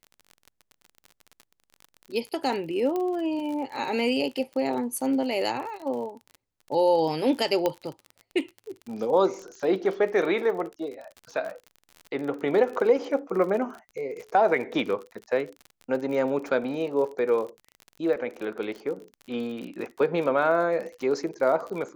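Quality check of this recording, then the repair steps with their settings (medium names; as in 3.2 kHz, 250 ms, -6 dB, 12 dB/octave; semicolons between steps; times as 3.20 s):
crackle 40 per s -34 dBFS
2.96 s: pop -18 dBFS
7.66 s: pop -11 dBFS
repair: de-click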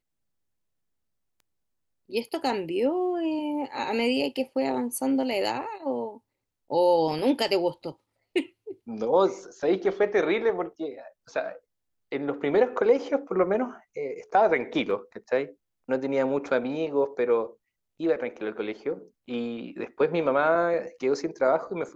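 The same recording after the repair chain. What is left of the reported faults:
nothing left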